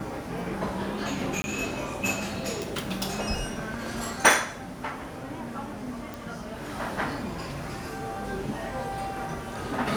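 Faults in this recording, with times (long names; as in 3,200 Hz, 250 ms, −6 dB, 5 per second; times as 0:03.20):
0:01.42–0:01.44: drop-out 20 ms
0:06.14: click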